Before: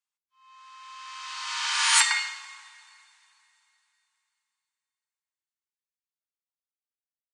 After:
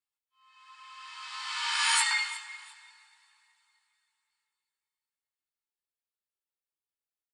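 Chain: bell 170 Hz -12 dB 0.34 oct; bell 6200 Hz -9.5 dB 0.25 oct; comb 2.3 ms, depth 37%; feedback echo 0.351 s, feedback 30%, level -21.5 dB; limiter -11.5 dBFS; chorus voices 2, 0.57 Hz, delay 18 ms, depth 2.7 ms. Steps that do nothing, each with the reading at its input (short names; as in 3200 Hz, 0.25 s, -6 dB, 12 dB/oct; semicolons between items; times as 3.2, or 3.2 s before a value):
bell 170 Hz: input band starts at 640 Hz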